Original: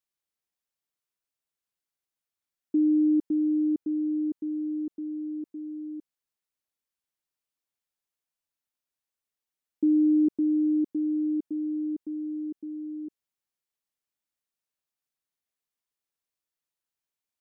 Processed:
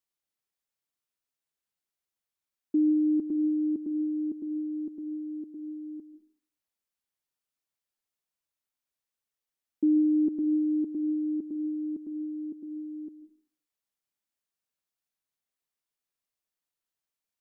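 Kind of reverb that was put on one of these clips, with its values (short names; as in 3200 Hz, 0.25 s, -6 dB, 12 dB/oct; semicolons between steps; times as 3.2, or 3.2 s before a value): digital reverb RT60 0.45 s, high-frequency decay 0.4×, pre-delay 95 ms, DRR 12.5 dB; gain -1 dB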